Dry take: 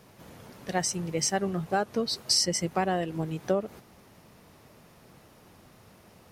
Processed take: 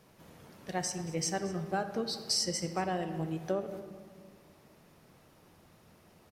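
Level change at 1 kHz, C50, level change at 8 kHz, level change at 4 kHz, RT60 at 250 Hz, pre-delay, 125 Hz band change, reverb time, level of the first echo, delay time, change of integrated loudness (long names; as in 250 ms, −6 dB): −5.5 dB, 9.0 dB, −6.0 dB, −6.0 dB, 2.3 s, 3 ms, −4.5 dB, 1.8 s, −18.5 dB, 228 ms, −6.0 dB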